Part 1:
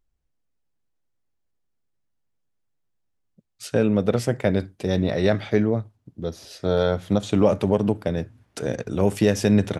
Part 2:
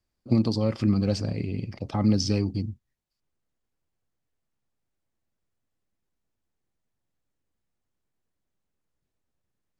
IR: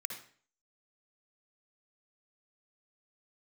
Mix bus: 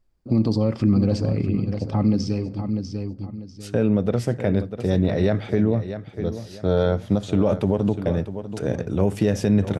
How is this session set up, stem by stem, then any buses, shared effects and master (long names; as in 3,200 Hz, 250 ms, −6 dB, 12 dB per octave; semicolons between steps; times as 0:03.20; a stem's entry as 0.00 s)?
−1.0 dB, 0.00 s, no send, echo send −13 dB, spectral tilt −1.5 dB per octave
+2.0 dB, 0.00 s, send −15.5 dB, echo send −11 dB, tilt shelving filter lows +5 dB, about 1,300 Hz; automatic ducking −18 dB, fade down 1.60 s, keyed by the first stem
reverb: on, RT60 0.45 s, pre-delay 52 ms
echo: repeating echo 645 ms, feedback 30%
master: brickwall limiter −10 dBFS, peak gain reduction 6.5 dB